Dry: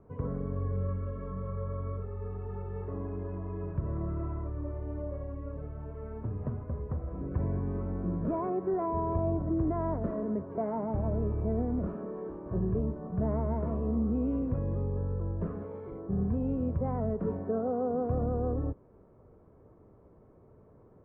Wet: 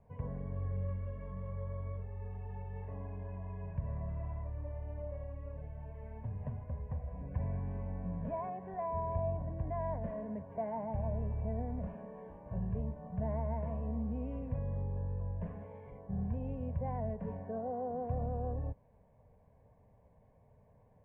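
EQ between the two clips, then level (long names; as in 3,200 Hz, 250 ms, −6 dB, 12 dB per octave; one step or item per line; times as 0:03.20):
high-frequency loss of the air 57 metres
high-shelf EQ 2,000 Hz +10 dB
phaser with its sweep stopped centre 1,300 Hz, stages 6
−3.5 dB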